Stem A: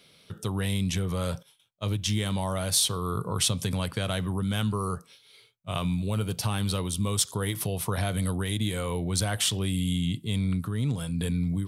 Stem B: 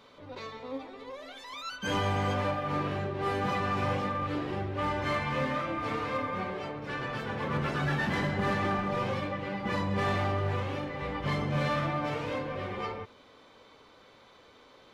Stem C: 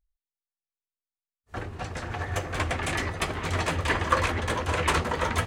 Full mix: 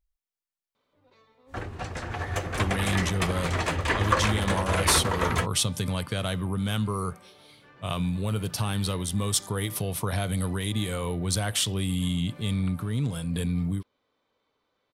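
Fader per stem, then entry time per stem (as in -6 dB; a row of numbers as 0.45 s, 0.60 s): 0.0 dB, -19.5 dB, 0.0 dB; 2.15 s, 0.75 s, 0.00 s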